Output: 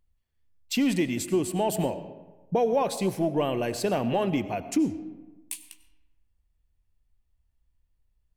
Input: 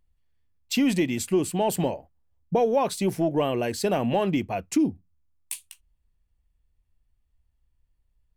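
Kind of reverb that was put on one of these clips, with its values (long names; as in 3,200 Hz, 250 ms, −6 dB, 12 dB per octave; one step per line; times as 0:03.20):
comb and all-pass reverb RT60 1.2 s, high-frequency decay 0.55×, pre-delay 55 ms, DRR 12.5 dB
level −2 dB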